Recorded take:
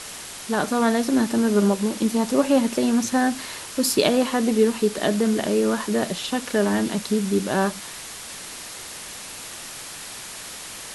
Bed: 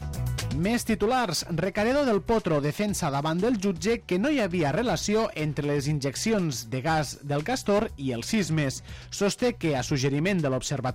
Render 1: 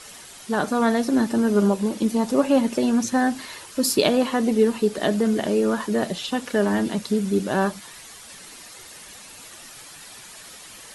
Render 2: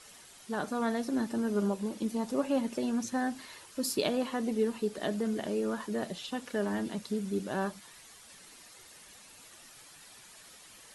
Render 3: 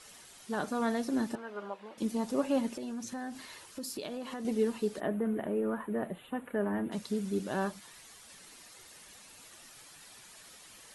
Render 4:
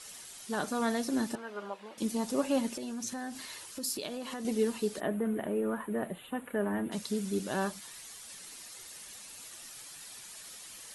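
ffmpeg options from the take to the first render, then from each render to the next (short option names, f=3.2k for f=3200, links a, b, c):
-af "afftdn=nr=9:nf=-37"
-af "volume=-11dB"
-filter_complex "[0:a]asettb=1/sr,asplit=3[a][b][c];[a]atrim=end=1.354[d];[b]atrim=start=1.35:end=1.98,asetpts=PTS-STARTPTS,afade=t=in:d=0.004:c=qsin,afade=t=out:st=0.626:d=0.004:c=qsin,acrossover=split=570 3300:gain=0.0891 1 0.0631[e][f][g];[e][f][g]amix=inputs=3:normalize=0[h];[c]atrim=start=1.976[i];[d][h]acrossfade=d=0.004:c1=hsin:c2=qsin[j];[j][i]acrossfade=d=0.004:c1=qsin:c2=hsin,asettb=1/sr,asplit=3[k][l][m];[k]atrim=end=2.724[n];[l]atrim=start=2.72:end=4.45,asetpts=PTS-STARTPTS,afade=t=in:d=0.004:c=qsin,afade=t=out:st=1.726:d=0.004:c=qsin,acompressor=threshold=-37dB:ratio=4:attack=3.2:release=140:knee=1:detection=peak[o];[m]atrim=start=4.446[p];[n][o]acrossfade=d=0.004:c1=hsin:c2=qsin[q];[q][p]acrossfade=d=0.004:c1=qsin:c2=hsin,asplit=3[r][s][t];[r]afade=t=out:st=4.99:d=0.02[u];[s]asuperstop=centerf=5400:order=4:qfactor=0.54,afade=t=in:st=4.99:d=0.02,afade=t=out:st=6.91:d=0.02[v];[t]afade=t=in:st=6.91:d=0.02[w];[u][v][w]amix=inputs=3:normalize=0"
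-af "equalizer=f=11k:t=o:w=2.8:g=7.5"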